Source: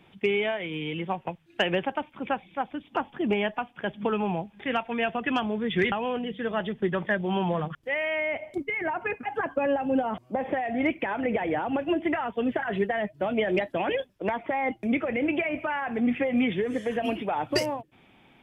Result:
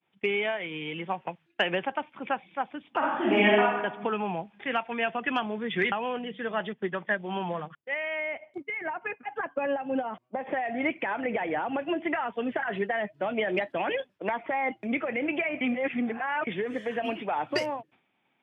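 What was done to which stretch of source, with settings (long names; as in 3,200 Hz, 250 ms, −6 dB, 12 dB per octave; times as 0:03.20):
0:02.98–0:03.61: thrown reverb, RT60 1 s, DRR −7.5 dB
0:06.73–0:10.47: expander for the loud parts, over −46 dBFS
0:15.61–0:16.47: reverse
whole clip: meter weighting curve A; downward expander −49 dBFS; bass and treble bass +8 dB, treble −10 dB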